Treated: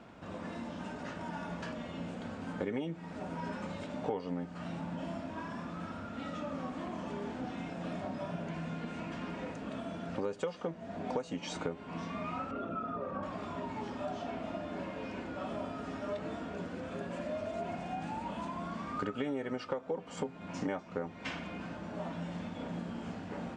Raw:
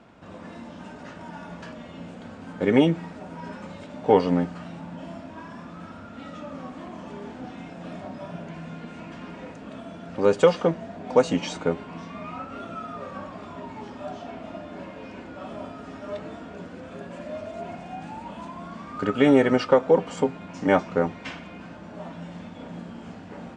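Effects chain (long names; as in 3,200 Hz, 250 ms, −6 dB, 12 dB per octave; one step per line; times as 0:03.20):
0:12.51–0:13.23: spectral envelope exaggerated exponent 1.5
downward compressor 8 to 1, threshold −32 dBFS, peak gain reduction 20 dB
level −1 dB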